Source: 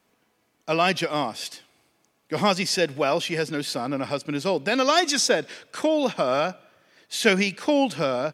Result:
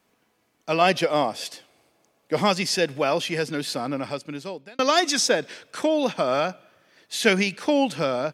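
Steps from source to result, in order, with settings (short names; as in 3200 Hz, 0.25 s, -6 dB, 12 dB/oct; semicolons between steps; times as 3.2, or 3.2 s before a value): 0.81–2.36 bell 560 Hz +6.5 dB 1 oct; 3.88–4.79 fade out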